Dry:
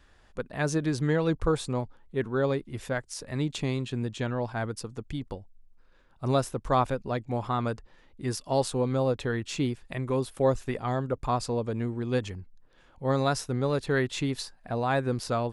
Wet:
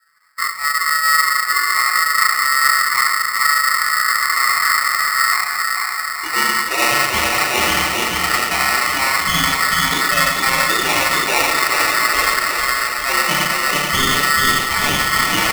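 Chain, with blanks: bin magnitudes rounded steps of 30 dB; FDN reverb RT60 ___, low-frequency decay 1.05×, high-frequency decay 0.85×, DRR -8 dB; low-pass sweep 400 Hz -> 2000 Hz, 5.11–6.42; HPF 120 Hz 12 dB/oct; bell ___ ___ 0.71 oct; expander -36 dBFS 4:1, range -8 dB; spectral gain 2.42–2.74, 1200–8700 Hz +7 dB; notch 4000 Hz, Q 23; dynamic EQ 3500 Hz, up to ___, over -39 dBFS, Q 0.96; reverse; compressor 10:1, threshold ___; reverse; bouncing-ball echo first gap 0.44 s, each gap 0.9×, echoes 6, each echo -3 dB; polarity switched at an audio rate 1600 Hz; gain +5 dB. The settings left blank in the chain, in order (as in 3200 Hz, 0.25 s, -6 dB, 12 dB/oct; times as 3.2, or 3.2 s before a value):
1 s, 290 Hz, +2.5 dB, +3 dB, -20 dBFS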